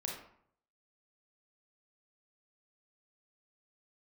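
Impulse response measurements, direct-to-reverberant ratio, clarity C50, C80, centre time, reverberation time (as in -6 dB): -1.0 dB, 3.0 dB, 7.5 dB, 40 ms, 0.65 s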